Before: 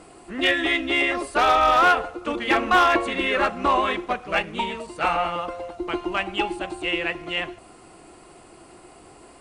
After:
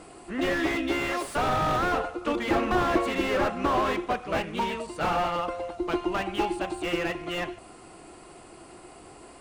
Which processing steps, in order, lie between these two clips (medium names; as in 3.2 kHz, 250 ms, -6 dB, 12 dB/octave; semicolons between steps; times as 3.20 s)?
0.99–1.89 s: RIAA curve recording; slew-rate limiter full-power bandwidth 66 Hz